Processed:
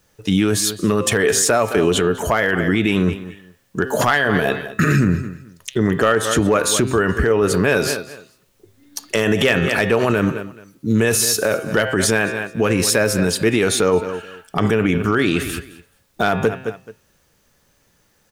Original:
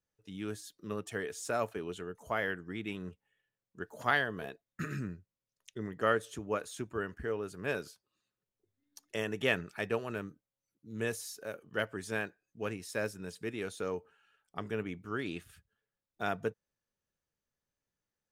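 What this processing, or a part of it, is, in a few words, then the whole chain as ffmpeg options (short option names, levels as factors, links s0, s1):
loud club master: -af "aecho=1:1:214|428:0.0944|0.0198,bandreject=f=129.9:t=h:w=4,bandreject=f=259.8:t=h:w=4,bandreject=f=389.7:t=h:w=4,bandreject=f=519.6:t=h:w=4,bandreject=f=649.5:t=h:w=4,bandreject=f=779.4:t=h:w=4,bandreject=f=909.3:t=h:w=4,bandreject=f=1039.2:t=h:w=4,bandreject=f=1169.1:t=h:w=4,bandreject=f=1299:t=h:w=4,bandreject=f=1428.9:t=h:w=4,bandreject=f=1558.8:t=h:w=4,bandreject=f=1688.7:t=h:w=4,bandreject=f=1818.6:t=h:w=4,bandreject=f=1948.5:t=h:w=4,bandreject=f=2078.4:t=h:w=4,bandreject=f=2208.3:t=h:w=4,bandreject=f=2338.2:t=h:w=4,bandreject=f=2468.1:t=h:w=4,bandreject=f=2598:t=h:w=4,bandreject=f=2727.9:t=h:w=4,bandreject=f=2857.8:t=h:w=4,bandreject=f=2987.7:t=h:w=4,bandreject=f=3117.6:t=h:w=4,bandreject=f=3247.5:t=h:w=4,bandreject=f=3377.4:t=h:w=4,bandreject=f=3507.3:t=h:w=4,bandreject=f=3637.2:t=h:w=4,bandreject=f=3767.1:t=h:w=4,bandreject=f=3897:t=h:w=4,bandreject=f=4026.9:t=h:w=4,bandreject=f=4156.8:t=h:w=4,bandreject=f=4286.7:t=h:w=4,bandreject=f=4416.6:t=h:w=4,bandreject=f=4546.5:t=h:w=4,bandreject=f=4676.4:t=h:w=4,bandreject=f=4806.3:t=h:w=4,acompressor=threshold=0.0158:ratio=2.5,asoftclip=type=hard:threshold=0.0422,alimiter=level_in=63.1:limit=0.891:release=50:level=0:latency=1,volume=0.501"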